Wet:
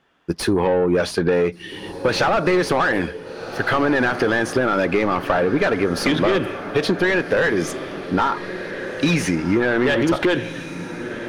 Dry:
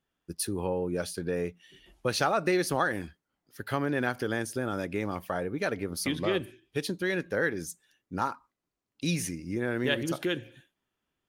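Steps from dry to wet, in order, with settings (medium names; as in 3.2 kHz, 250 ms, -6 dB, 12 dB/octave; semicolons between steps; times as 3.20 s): overdrive pedal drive 24 dB, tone 2.3 kHz, clips at -12 dBFS; treble shelf 6.8 kHz -10.5 dB; echo that smears into a reverb 1531 ms, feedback 42%, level -14 dB; compression, threshold -23 dBFS, peak gain reduction 5.5 dB; bass shelf 220 Hz +5.5 dB; trim +7 dB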